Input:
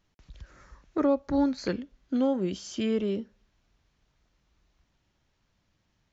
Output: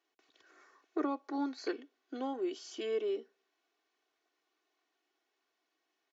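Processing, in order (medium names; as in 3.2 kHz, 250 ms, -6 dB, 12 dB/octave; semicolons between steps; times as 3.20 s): high-pass 330 Hz 24 dB/octave; treble shelf 5.7 kHz -6.5 dB; comb 2.7 ms, depth 74%; trim -6 dB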